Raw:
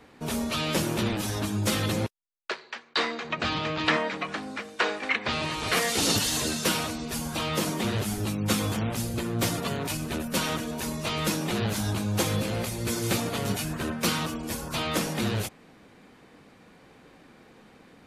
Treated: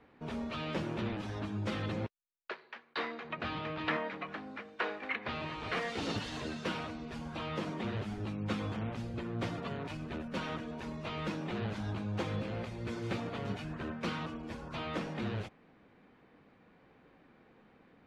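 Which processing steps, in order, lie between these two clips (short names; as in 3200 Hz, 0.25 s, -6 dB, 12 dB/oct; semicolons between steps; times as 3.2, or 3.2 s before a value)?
LPF 2700 Hz 12 dB/oct; gain -8.5 dB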